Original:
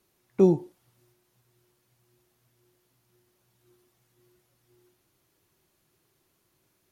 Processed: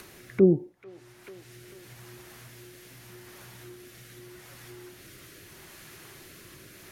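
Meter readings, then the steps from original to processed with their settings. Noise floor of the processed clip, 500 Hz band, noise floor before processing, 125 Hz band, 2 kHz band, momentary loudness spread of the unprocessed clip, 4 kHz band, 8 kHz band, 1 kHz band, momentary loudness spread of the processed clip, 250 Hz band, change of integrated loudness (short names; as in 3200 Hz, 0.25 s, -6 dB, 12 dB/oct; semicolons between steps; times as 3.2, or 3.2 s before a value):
-53 dBFS, +0.5 dB, -72 dBFS, +1.0 dB, +16.0 dB, 13 LU, +15.0 dB, n/a, -5.0 dB, 13 LU, +0.5 dB, +0.5 dB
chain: treble ducked by the level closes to 800 Hz, closed at -27 dBFS; rotary speaker horn 0.8 Hz; on a send: thin delay 0.441 s, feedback 30%, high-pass 2000 Hz, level -3 dB; on the sum: upward compressor, threshold -33 dBFS; bell 1800 Hz +7.5 dB 1.1 oct; gain +1.5 dB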